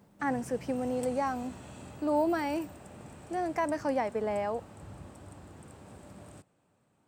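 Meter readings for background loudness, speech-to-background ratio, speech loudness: -48.5 LUFS, 16.0 dB, -32.5 LUFS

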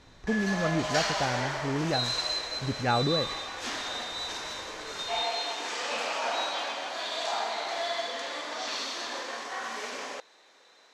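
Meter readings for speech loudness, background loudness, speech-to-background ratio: -31.0 LUFS, -31.5 LUFS, 0.5 dB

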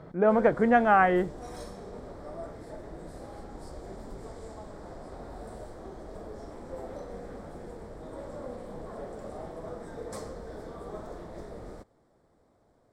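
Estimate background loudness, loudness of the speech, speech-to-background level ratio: -43.0 LUFS, -23.0 LUFS, 20.0 dB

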